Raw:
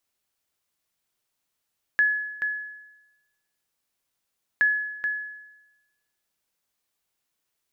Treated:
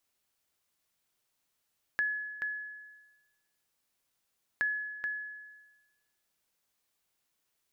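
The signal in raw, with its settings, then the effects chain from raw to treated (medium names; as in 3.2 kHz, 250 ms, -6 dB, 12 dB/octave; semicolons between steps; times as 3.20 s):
sonar ping 1.7 kHz, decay 1.01 s, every 2.62 s, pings 2, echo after 0.43 s, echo -7.5 dB -14.5 dBFS
compression 1.5:1, threshold -47 dBFS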